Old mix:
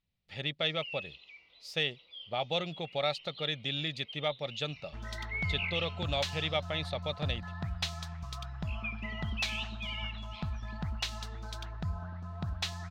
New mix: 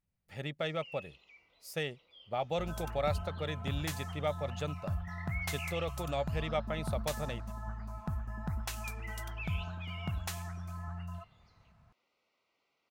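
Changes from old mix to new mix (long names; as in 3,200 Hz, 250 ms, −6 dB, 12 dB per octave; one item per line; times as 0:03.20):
second sound: entry −2.35 s
master: add drawn EQ curve 1,500 Hz 0 dB, 3,800 Hz −13 dB, 11,000 Hz +13 dB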